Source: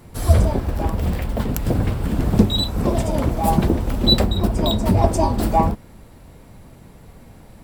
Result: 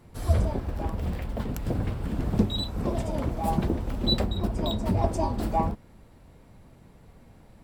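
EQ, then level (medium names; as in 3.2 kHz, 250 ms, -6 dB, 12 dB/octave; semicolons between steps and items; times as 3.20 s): treble shelf 7.5 kHz -7 dB; -8.5 dB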